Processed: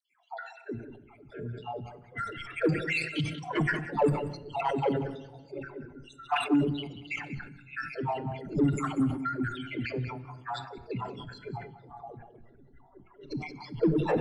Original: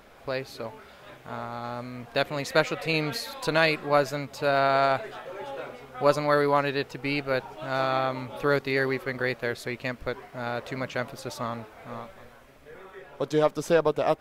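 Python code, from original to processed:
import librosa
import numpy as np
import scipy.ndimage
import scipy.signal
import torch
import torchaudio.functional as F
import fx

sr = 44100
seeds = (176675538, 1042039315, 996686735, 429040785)

p1 = fx.spec_dropout(x, sr, seeds[0], share_pct=73)
p2 = fx.dispersion(p1, sr, late='lows', ms=148.0, hz=570.0)
p3 = fx.noise_reduce_blind(p2, sr, reduce_db=13)
p4 = fx.dynamic_eq(p3, sr, hz=320.0, q=1.9, threshold_db=-46.0, ratio=4.0, max_db=5)
p5 = fx.formant_shift(p4, sr, semitones=-6)
p6 = fx.env_lowpass(p5, sr, base_hz=2600.0, full_db=-23.0)
p7 = 10.0 ** (-27.0 / 20.0) * np.tanh(p6 / 10.0 ** (-27.0 / 20.0))
p8 = p6 + F.gain(torch.from_numpy(p7), -4.0).numpy()
p9 = p8 + 10.0 ** (-13.0 / 20.0) * np.pad(p8, (int(187 * sr / 1000.0), 0))[:len(p8)]
p10 = fx.room_shoebox(p9, sr, seeds[1], volume_m3=1200.0, walls='mixed', distance_m=0.38)
p11 = fx.sustainer(p10, sr, db_per_s=86.0)
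y = F.gain(torch.from_numpy(p11), -2.5).numpy()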